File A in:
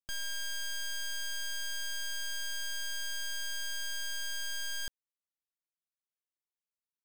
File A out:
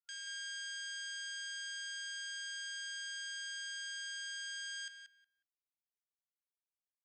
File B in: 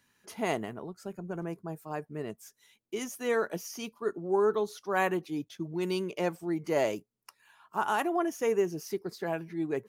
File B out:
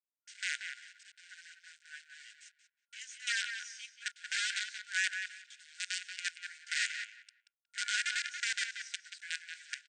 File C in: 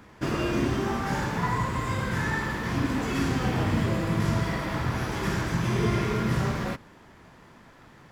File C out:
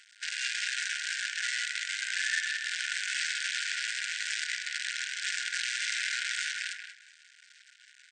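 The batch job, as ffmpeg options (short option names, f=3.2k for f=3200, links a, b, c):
-filter_complex "[0:a]acrusher=bits=5:dc=4:mix=0:aa=0.000001,asplit=2[a][b];[b]adelay=182,lowpass=f=2.6k:p=1,volume=-5dB,asplit=2[c][d];[d]adelay=182,lowpass=f=2.6k:p=1,volume=0.21,asplit=2[e][f];[f]adelay=182,lowpass=f=2.6k:p=1,volume=0.21[g];[a][c][e][g]amix=inputs=4:normalize=0,afftfilt=real='re*between(b*sr/4096,1400,8900)':imag='im*between(b*sr/4096,1400,8900)':win_size=4096:overlap=0.75"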